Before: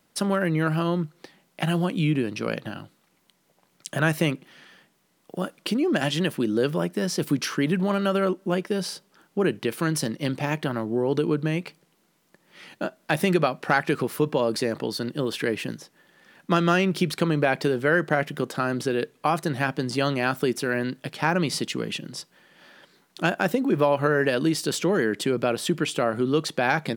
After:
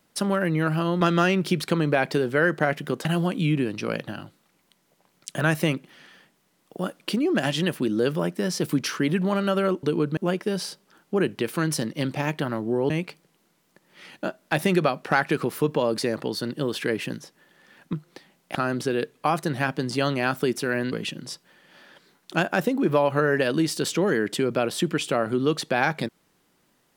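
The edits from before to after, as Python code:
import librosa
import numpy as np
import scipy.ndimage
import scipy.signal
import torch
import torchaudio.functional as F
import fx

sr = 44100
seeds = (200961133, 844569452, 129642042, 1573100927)

y = fx.edit(x, sr, fx.swap(start_s=1.01, length_s=0.62, other_s=16.51, other_length_s=2.04),
    fx.move(start_s=11.14, length_s=0.34, to_s=8.41),
    fx.cut(start_s=20.92, length_s=0.87), tone=tone)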